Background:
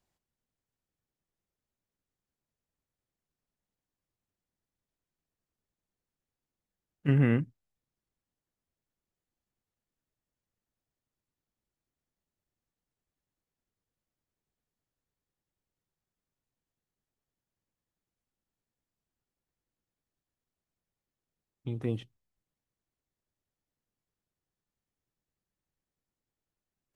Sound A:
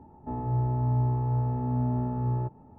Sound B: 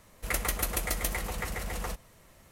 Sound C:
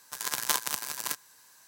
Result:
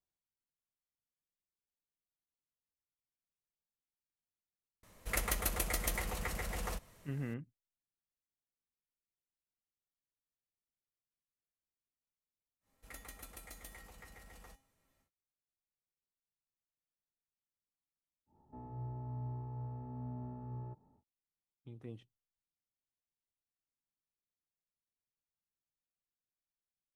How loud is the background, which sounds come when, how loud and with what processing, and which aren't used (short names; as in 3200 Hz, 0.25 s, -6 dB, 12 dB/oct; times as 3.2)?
background -16 dB
4.83 add B -4.5 dB
12.6 add B -9 dB, fades 0.10 s + resonator 270 Hz, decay 0.3 s, harmonics odd, mix 80%
18.26 add A -16.5 dB, fades 0.10 s
not used: C